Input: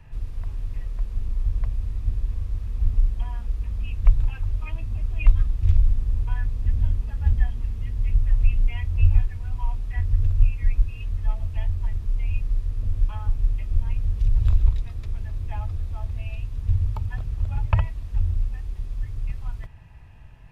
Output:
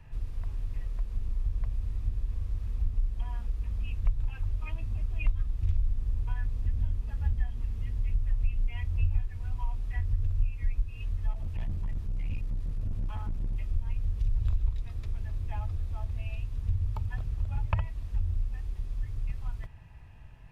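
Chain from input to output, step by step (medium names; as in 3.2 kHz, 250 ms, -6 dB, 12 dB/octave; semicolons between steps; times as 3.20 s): 11.33–13.56 s: hard clipper -24 dBFS, distortion -16 dB; compression 2:1, threshold -23 dBFS, peak gain reduction 9 dB; trim -3.5 dB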